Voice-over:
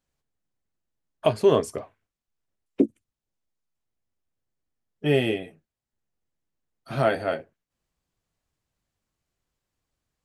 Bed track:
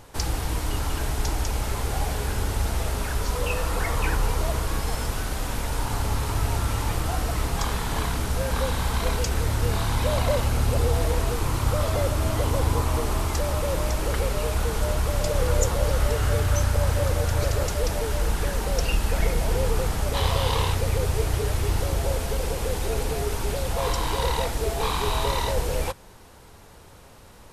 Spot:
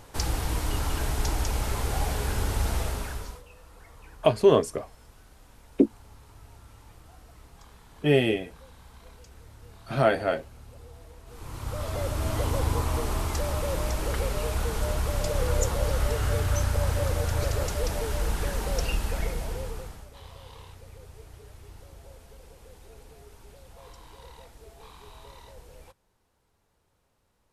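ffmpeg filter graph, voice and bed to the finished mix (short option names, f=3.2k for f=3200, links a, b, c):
-filter_complex "[0:a]adelay=3000,volume=0.5dB[a];[1:a]volume=20.5dB,afade=t=out:st=2.75:d=0.68:silence=0.0630957,afade=t=in:st=11.25:d=1.12:silence=0.0794328,afade=t=out:st=18.79:d=1.3:silence=0.1[b];[a][b]amix=inputs=2:normalize=0"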